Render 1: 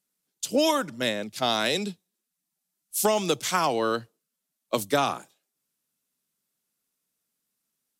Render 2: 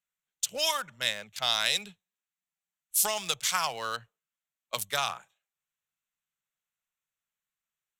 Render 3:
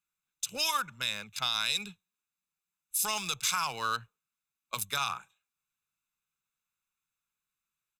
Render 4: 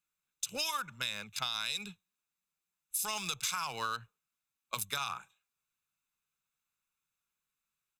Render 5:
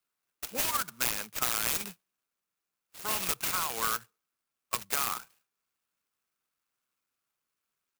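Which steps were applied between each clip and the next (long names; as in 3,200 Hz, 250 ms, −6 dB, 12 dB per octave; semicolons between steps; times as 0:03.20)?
adaptive Wiener filter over 9 samples; guitar amp tone stack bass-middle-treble 10-0-10; level +4 dB
comb filter 0.8 ms, depth 61%; brickwall limiter −18.5 dBFS, peak gain reduction 8.5 dB
downward compressor, threshold −31 dBFS, peak gain reduction 6.5 dB
loudspeaker in its box 280–4,100 Hz, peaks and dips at 580 Hz −5 dB, 890 Hz −5 dB, 2,900 Hz +5 dB; converter with an unsteady clock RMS 0.1 ms; level +6.5 dB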